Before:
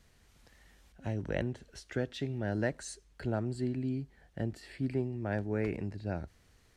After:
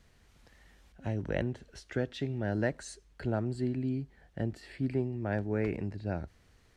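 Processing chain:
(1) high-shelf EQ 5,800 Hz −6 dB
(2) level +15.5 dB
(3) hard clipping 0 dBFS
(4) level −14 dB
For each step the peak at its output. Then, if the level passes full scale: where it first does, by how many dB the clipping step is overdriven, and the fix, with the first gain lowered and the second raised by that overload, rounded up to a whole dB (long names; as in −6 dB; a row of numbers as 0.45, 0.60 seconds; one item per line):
−18.0, −2.5, −2.5, −16.5 dBFS
no step passes full scale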